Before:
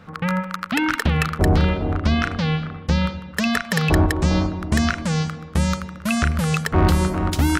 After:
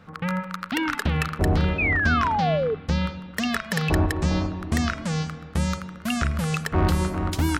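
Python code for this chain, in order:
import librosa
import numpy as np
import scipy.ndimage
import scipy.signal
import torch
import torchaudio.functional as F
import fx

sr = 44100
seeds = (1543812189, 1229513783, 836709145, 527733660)

y = fx.rev_spring(x, sr, rt60_s=3.1, pass_ms=(33, 40), chirp_ms=30, drr_db=16.5)
y = fx.spec_paint(y, sr, seeds[0], shape='fall', start_s=1.78, length_s=0.97, low_hz=420.0, high_hz=2600.0, level_db=-19.0)
y = fx.record_warp(y, sr, rpm=45.0, depth_cents=100.0)
y = y * librosa.db_to_amplitude(-4.5)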